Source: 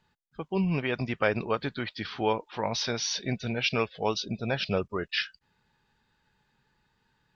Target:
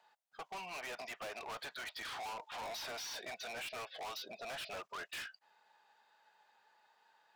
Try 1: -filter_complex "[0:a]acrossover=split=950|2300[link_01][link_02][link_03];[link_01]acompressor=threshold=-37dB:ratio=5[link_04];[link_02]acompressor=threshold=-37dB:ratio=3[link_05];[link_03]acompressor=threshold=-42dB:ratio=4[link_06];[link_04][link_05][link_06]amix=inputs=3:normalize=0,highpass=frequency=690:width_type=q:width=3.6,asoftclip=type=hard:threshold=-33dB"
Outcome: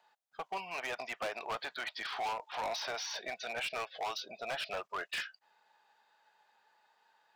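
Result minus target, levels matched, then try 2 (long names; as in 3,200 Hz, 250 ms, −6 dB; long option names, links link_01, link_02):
hard clipping: distortion −4 dB
-filter_complex "[0:a]acrossover=split=950|2300[link_01][link_02][link_03];[link_01]acompressor=threshold=-37dB:ratio=5[link_04];[link_02]acompressor=threshold=-37dB:ratio=3[link_05];[link_03]acompressor=threshold=-42dB:ratio=4[link_06];[link_04][link_05][link_06]amix=inputs=3:normalize=0,highpass=frequency=690:width_type=q:width=3.6,asoftclip=type=hard:threshold=-42dB"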